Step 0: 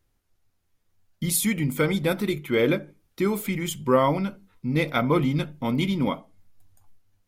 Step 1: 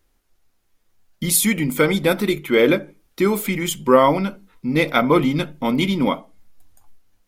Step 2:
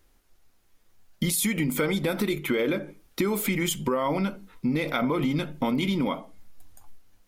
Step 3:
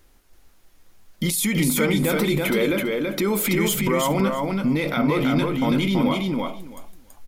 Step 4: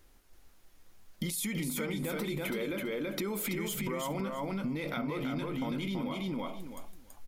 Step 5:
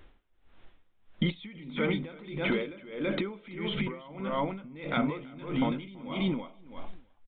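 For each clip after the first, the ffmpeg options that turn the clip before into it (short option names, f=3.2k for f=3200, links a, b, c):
-af "equalizer=f=110:t=o:w=0.77:g=-14,volume=7dB"
-af "alimiter=limit=-12.5dB:level=0:latency=1:release=37,acompressor=threshold=-25dB:ratio=6,volume=2.5dB"
-filter_complex "[0:a]alimiter=limit=-21dB:level=0:latency=1:release=11,asplit=2[a][b];[b]aecho=0:1:330|660|990:0.708|0.106|0.0159[c];[a][c]amix=inputs=2:normalize=0,volume=6.5dB"
-af "acompressor=threshold=-27dB:ratio=6,volume=-5dB"
-af "aresample=8000,aresample=44100,aeval=exprs='val(0)*pow(10,-21*(0.5-0.5*cos(2*PI*1.6*n/s))/20)':c=same,volume=8dB"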